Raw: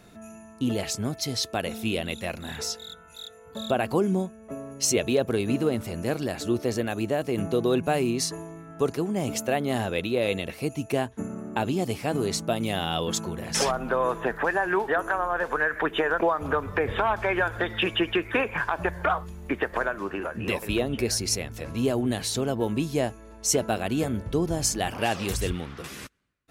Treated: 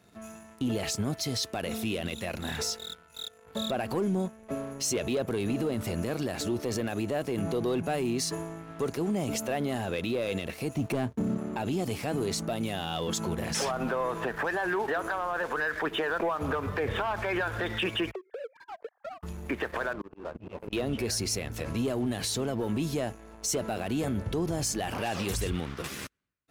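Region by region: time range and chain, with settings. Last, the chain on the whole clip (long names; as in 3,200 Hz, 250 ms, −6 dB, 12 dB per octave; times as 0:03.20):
0:10.75–0:11.37: parametric band 170 Hz +8.5 dB 3 octaves + slack as between gear wheels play −45.5 dBFS
0:18.11–0:19.23: three sine waves on the formant tracks + resonant band-pass 460 Hz, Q 3.8 + downward compressor 16 to 1, threshold −36 dBFS
0:19.93–0:20.73: moving average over 24 samples + volume swells 220 ms
whole clip: high-pass filter 47 Hz 24 dB per octave; leveller curve on the samples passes 2; brickwall limiter −17.5 dBFS; level −5 dB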